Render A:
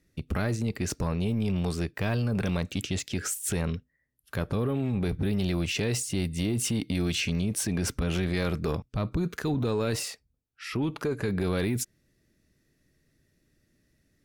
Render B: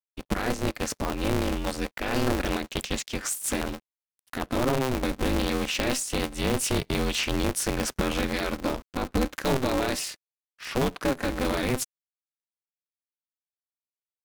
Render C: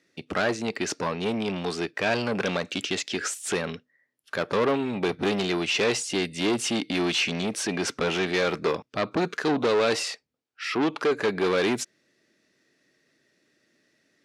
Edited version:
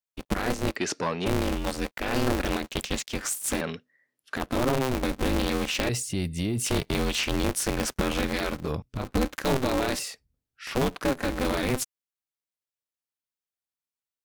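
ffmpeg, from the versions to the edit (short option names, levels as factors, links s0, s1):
-filter_complex "[2:a]asplit=2[s0][s1];[0:a]asplit=3[s2][s3][s4];[1:a]asplit=6[s5][s6][s7][s8][s9][s10];[s5]atrim=end=0.762[s11];[s0]atrim=start=0.758:end=1.262[s12];[s6]atrim=start=1.258:end=3.612[s13];[s1]atrim=start=3.608:end=4.362[s14];[s7]atrim=start=4.358:end=5.892[s15];[s2]atrim=start=5.888:end=6.662[s16];[s8]atrim=start=6.658:end=8.73[s17];[s3]atrim=start=8.49:end=9.14[s18];[s9]atrim=start=8.9:end=9.992[s19];[s4]atrim=start=9.988:end=10.672[s20];[s10]atrim=start=10.668[s21];[s11][s12]acrossfade=d=0.004:c1=hsin:c2=hsin[s22];[s22][s13]acrossfade=d=0.004:c1=hsin:c2=hsin[s23];[s23][s14]acrossfade=d=0.004:c1=hsin:c2=hsin[s24];[s24][s15]acrossfade=d=0.004:c1=hsin:c2=hsin[s25];[s25][s16]acrossfade=d=0.004:c1=hsin:c2=hsin[s26];[s26][s17]acrossfade=d=0.004:c1=hsin:c2=hsin[s27];[s27][s18]acrossfade=d=0.24:c1=tri:c2=tri[s28];[s28][s19]acrossfade=d=0.24:c1=tri:c2=tri[s29];[s29][s20]acrossfade=d=0.004:c1=hsin:c2=hsin[s30];[s30][s21]acrossfade=d=0.004:c1=hsin:c2=hsin"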